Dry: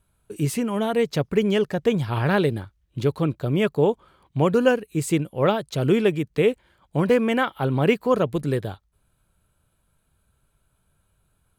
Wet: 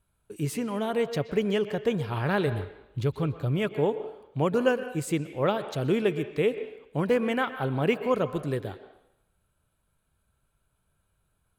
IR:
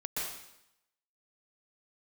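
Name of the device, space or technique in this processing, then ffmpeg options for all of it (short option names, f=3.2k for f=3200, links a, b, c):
filtered reverb send: -filter_complex "[0:a]asplit=3[a][b][c];[a]afade=t=out:st=2.46:d=0.02[d];[b]asubboost=boost=4.5:cutoff=120,afade=t=in:st=2.46:d=0.02,afade=t=out:st=3.67:d=0.02[e];[c]afade=t=in:st=3.67:d=0.02[f];[d][e][f]amix=inputs=3:normalize=0,asplit=2[g][h];[h]highpass=340,lowpass=4k[i];[1:a]atrim=start_sample=2205[j];[i][j]afir=irnorm=-1:irlink=0,volume=-12.5dB[k];[g][k]amix=inputs=2:normalize=0,volume=-6dB"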